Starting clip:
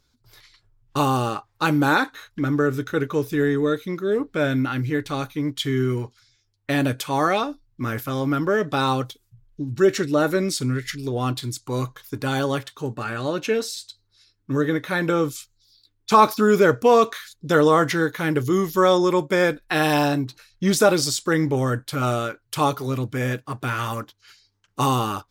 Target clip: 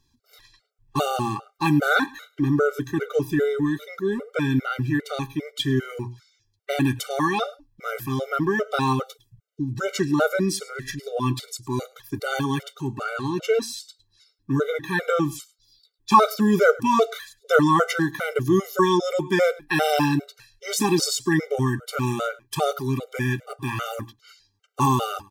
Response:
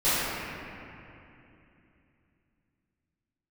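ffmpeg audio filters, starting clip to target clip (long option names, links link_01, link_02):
-af "bandreject=frequency=60:width_type=h:width=6,bandreject=frequency=120:width_type=h:width=6,aecho=1:1:105:0.0794,afftfilt=real='re*gt(sin(2*PI*2.5*pts/sr)*(1-2*mod(floor(b*sr/1024/390),2)),0)':imag='im*gt(sin(2*PI*2.5*pts/sr)*(1-2*mod(floor(b*sr/1024/390),2)),0)':win_size=1024:overlap=0.75,volume=2dB"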